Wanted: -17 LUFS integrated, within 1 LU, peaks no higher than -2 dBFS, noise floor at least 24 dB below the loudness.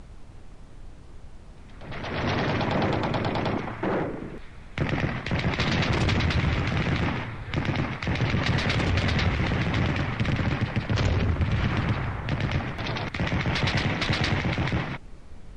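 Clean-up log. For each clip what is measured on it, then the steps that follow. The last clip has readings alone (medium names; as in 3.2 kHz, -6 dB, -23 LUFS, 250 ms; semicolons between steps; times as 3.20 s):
noise floor -44 dBFS; noise floor target -51 dBFS; loudness -26.5 LUFS; peak level -12.0 dBFS; loudness target -17.0 LUFS
-> noise print and reduce 7 dB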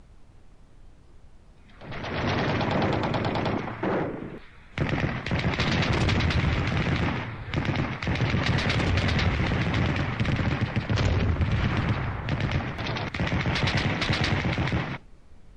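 noise floor -51 dBFS; loudness -26.5 LUFS; peak level -12.0 dBFS; loudness target -17.0 LUFS
-> trim +9.5 dB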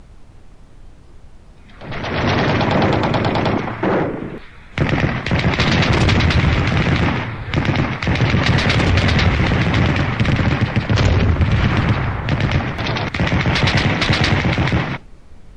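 loudness -17.0 LUFS; peak level -2.5 dBFS; noise floor -42 dBFS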